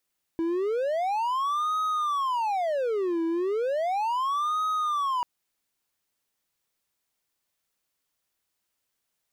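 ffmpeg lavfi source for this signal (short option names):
-f lavfi -i "aevalsrc='0.0794*(1-4*abs(mod((794.5*t-465.5/(2*PI*0.35)*sin(2*PI*0.35*t))+0.25,1)-0.5))':d=4.84:s=44100"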